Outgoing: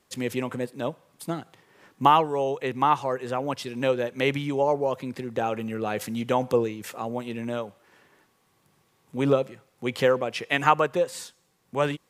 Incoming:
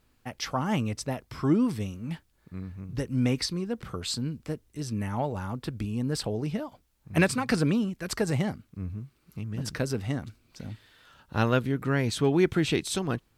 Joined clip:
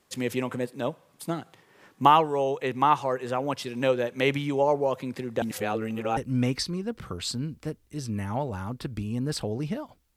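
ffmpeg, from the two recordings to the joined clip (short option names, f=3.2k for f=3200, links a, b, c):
-filter_complex "[0:a]apad=whole_dur=10.16,atrim=end=10.16,asplit=2[a][b];[a]atrim=end=5.422[c];[b]atrim=start=5.418:end=6.172,asetpts=PTS-STARTPTS,areverse[d];[1:a]atrim=start=2.998:end=6.99[e];[c][d]acrossfade=d=0.004:c1=hsin:c2=hsin[f];[f][e]acrossfade=d=0.004:c1=hsin:c2=hsin"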